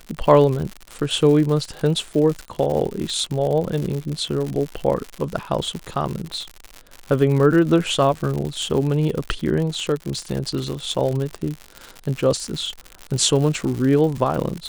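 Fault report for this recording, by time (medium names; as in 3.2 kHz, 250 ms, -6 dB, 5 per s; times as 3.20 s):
crackle 110 per s -25 dBFS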